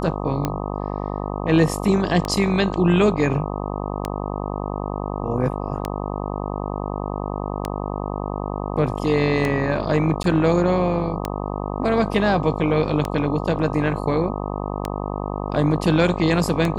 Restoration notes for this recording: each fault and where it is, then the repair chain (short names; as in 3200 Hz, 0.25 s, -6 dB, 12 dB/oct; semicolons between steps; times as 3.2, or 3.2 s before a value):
buzz 50 Hz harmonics 25 -27 dBFS
tick 33 1/3 rpm -9 dBFS
10.23–10.24 gap 12 ms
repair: de-click; de-hum 50 Hz, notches 25; interpolate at 10.23, 12 ms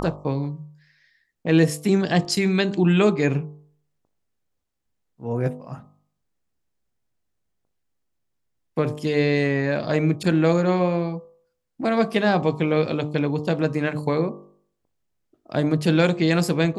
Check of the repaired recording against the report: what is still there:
none